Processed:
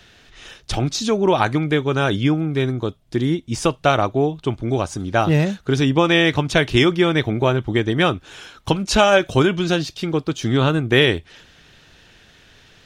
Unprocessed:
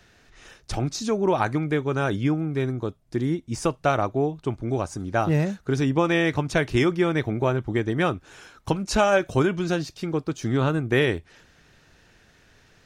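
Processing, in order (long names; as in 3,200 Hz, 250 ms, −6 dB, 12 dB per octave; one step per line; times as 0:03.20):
parametric band 3,300 Hz +8.5 dB 0.7 octaves
level +5 dB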